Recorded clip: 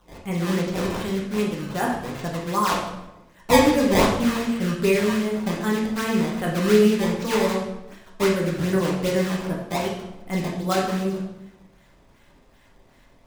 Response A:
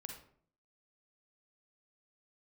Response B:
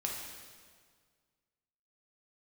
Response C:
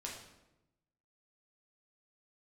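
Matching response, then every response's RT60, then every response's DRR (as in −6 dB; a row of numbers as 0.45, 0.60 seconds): C; 0.55, 1.8, 0.95 seconds; 2.5, −2.0, −3.0 decibels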